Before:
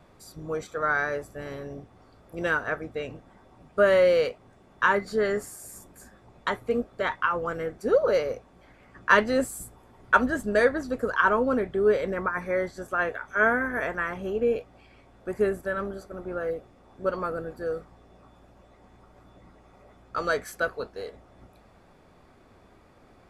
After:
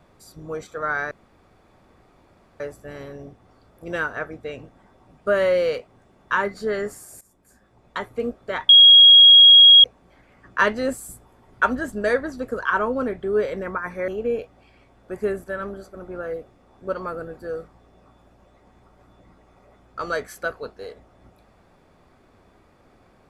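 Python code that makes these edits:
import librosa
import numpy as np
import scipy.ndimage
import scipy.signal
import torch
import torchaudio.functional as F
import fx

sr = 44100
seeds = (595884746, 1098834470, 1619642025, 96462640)

y = fx.edit(x, sr, fx.insert_room_tone(at_s=1.11, length_s=1.49),
    fx.fade_in_from(start_s=5.72, length_s=0.94, floor_db=-16.5),
    fx.bleep(start_s=7.2, length_s=1.15, hz=3290.0, db=-6.0),
    fx.cut(start_s=12.59, length_s=1.66), tone=tone)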